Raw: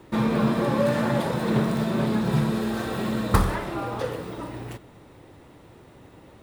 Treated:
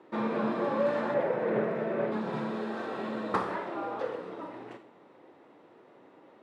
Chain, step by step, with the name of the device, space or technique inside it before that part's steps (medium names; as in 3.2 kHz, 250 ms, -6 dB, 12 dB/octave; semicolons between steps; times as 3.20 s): high-pass 250 Hz 12 dB/octave; high-pass 270 Hz 6 dB/octave; 1.14–2.12 s: graphic EQ 125/250/500/1000/2000/4000/8000 Hz +4/-5/+8/-5/+6/-9/-10 dB; through cloth (low-pass 7.2 kHz 12 dB/octave; treble shelf 3.4 kHz -18 dB); Schroeder reverb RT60 0.46 s, combs from 33 ms, DRR 9.5 dB; trim -2.5 dB